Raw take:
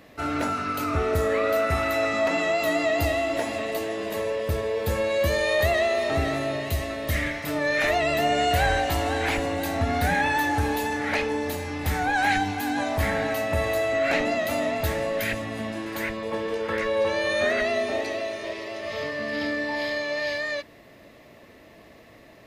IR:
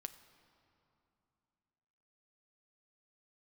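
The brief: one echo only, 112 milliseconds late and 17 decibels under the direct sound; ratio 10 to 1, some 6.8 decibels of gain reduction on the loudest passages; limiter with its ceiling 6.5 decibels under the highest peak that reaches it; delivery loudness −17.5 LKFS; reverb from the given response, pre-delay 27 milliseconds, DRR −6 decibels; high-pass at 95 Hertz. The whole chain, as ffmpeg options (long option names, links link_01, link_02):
-filter_complex "[0:a]highpass=95,acompressor=threshold=-26dB:ratio=10,alimiter=limit=-22.5dB:level=0:latency=1,aecho=1:1:112:0.141,asplit=2[link_01][link_02];[1:a]atrim=start_sample=2205,adelay=27[link_03];[link_02][link_03]afir=irnorm=-1:irlink=0,volume=10dB[link_04];[link_01][link_04]amix=inputs=2:normalize=0,volume=6dB"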